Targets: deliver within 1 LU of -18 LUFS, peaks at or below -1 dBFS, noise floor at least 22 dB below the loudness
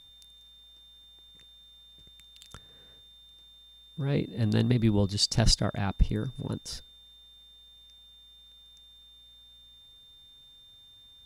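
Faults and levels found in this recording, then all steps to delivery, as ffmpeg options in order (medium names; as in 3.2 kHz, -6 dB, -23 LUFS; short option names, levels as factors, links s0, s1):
steady tone 3.6 kHz; tone level -52 dBFS; loudness -28.0 LUFS; peak level -9.5 dBFS; loudness target -18.0 LUFS
-> -af "bandreject=f=3600:w=30"
-af "volume=3.16,alimiter=limit=0.891:level=0:latency=1"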